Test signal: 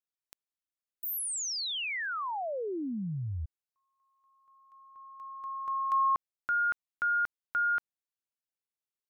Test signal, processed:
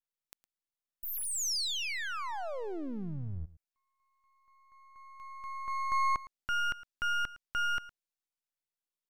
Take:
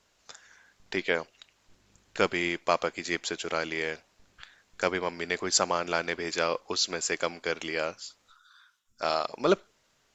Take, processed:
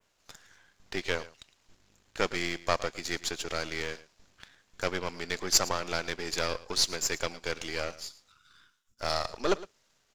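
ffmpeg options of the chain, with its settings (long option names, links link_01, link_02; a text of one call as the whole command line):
ffmpeg -i in.wav -af "aeval=exprs='if(lt(val(0),0),0.251*val(0),val(0))':channel_layout=same,adynamicequalizer=threshold=0.00282:dfrequency=5400:dqfactor=0.92:tfrequency=5400:tqfactor=0.92:attack=5:release=100:ratio=0.375:range=3:mode=boostabove:tftype=bell,aecho=1:1:111:0.126" out.wav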